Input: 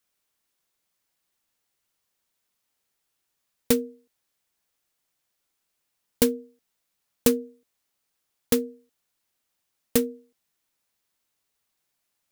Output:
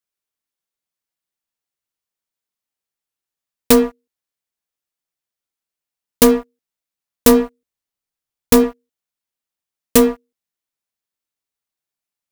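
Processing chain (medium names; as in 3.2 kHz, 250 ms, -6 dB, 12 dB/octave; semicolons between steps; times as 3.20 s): 7.31–8.64 s: bass shelf 110 Hz +9.5 dB; waveshaping leveller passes 5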